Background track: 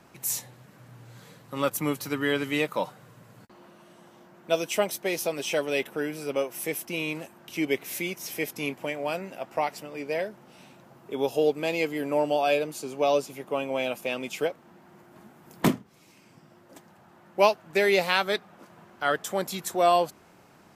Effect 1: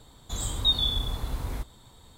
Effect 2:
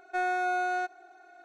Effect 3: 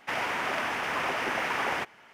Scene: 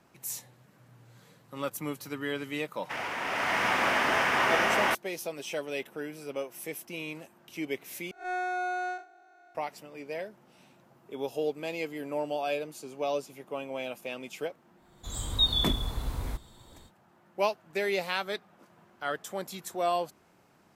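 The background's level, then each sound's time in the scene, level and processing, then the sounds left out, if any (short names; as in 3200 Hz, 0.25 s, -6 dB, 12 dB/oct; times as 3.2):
background track -7.5 dB
2.82 add 3 -4.5 dB + bloom reverb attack 0.64 s, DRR -8 dB
8.11 replace with 2 -3 dB + time blur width 0.104 s
14.74 add 1 -1.5 dB, fades 0.05 s + opening faded in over 0.63 s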